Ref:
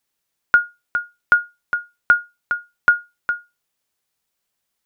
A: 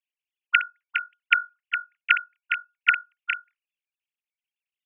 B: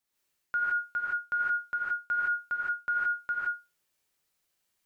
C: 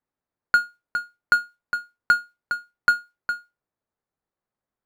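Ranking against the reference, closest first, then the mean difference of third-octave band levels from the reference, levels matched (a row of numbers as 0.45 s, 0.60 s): C, A, B; 3.0 dB, 6.0 dB, 8.0 dB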